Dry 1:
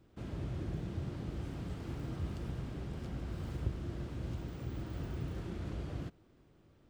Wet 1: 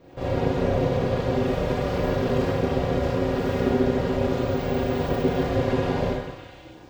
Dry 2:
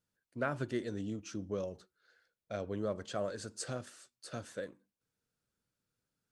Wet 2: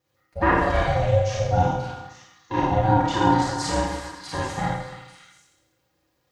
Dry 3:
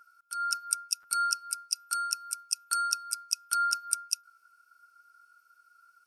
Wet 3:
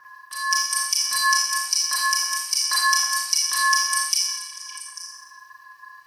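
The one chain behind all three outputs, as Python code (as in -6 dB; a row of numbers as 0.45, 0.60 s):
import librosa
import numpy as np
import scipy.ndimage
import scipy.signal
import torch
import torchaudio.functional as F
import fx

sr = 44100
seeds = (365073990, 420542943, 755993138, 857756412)

p1 = fx.peak_eq(x, sr, hz=9200.0, db=-11.0, octaves=0.78)
p2 = p1 + 0.88 * np.pad(p1, (int(4.6 * sr / 1000.0), 0))[:len(p1)]
p3 = p2 + fx.echo_stepped(p2, sr, ms=281, hz=1100.0, octaves=1.4, feedback_pct=70, wet_db=-6, dry=0)
p4 = fx.rev_schroeder(p3, sr, rt60_s=0.9, comb_ms=28, drr_db=-5.5)
p5 = p4 * np.sin(2.0 * np.pi * 320.0 * np.arange(len(p4)) / sr)
y = p5 * 10.0 ** (-24 / 20.0) / np.sqrt(np.mean(np.square(p5)))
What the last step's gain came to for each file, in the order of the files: +13.5, +11.0, +11.0 dB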